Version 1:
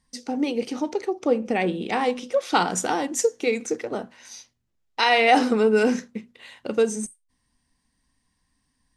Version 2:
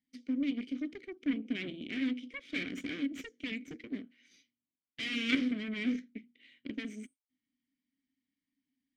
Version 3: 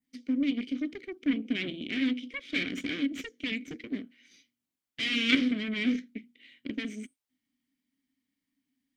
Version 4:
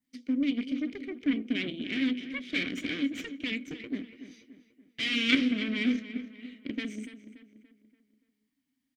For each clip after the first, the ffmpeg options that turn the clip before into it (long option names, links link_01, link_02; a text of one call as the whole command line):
ffmpeg -i in.wav -filter_complex "[0:a]aeval=exprs='clip(val(0),-1,0.15)':channel_layout=same,aeval=exprs='0.447*(cos(1*acos(clip(val(0)/0.447,-1,1)))-cos(1*PI/2))+0.2*(cos(3*acos(clip(val(0)/0.447,-1,1)))-cos(3*PI/2))+0.0447*(cos(8*acos(clip(val(0)/0.447,-1,1)))-cos(8*PI/2))':channel_layout=same,asplit=3[link_01][link_02][link_03];[link_01]bandpass=frequency=270:width_type=q:width=8,volume=0dB[link_04];[link_02]bandpass=frequency=2290:width_type=q:width=8,volume=-6dB[link_05];[link_03]bandpass=frequency=3010:width_type=q:width=8,volume=-9dB[link_06];[link_04][link_05][link_06]amix=inputs=3:normalize=0,volume=6.5dB" out.wav
ffmpeg -i in.wav -af "adynamicequalizer=threshold=0.00355:dfrequency=3600:dqfactor=1.2:tfrequency=3600:tqfactor=1.2:attack=5:release=100:ratio=0.375:range=2:mode=boostabove:tftype=bell,volume=4.5dB" out.wav
ffmpeg -i in.wav -filter_complex "[0:a]asplit=2[link_01][link_02];[link_02]adelay=288,lowpass=frequency=3100:poles=1,volume=-12dB,asplit=2[link_03][link_04];[link_04]adelay=288,lowpass=frequency=3100:poles=1,volume=0.46,asplit=2[link_05][link_06];[link_06]adelay=288,lowpass=frequency=3100:poles=1,volume=0.46,asplit=2[link_07][link_08];[link_08]adelay=288,lowpass=frequency=3100:poles=1,volume=0.46,asplit=2[link_09][link_10];[link_10]adelay=288,lowpass=frequency=3100:poles=1,volume=0.46[link_11];[link_01][link_03][link_05][link_07][link_09][link_11]amix=inputs=6:normalize=0" out.wav